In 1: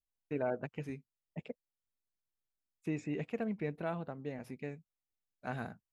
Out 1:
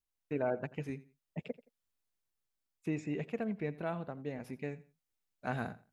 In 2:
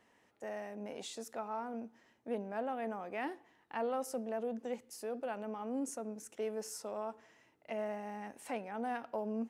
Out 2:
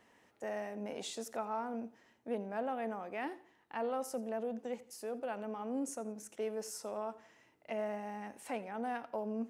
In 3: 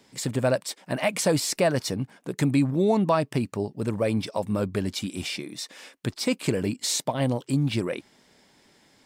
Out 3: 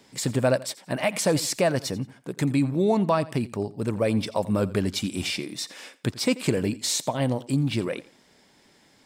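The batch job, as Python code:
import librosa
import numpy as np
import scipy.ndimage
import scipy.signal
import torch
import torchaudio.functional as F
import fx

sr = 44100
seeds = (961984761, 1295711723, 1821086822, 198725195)

p1 = fx.rider(x, sr, range_db=4, speed_s=2.0)
y = p1 + fx.echo_feedback(p1, sr, ms=86, feedback_pct=28, wet_db=-19, dry=0)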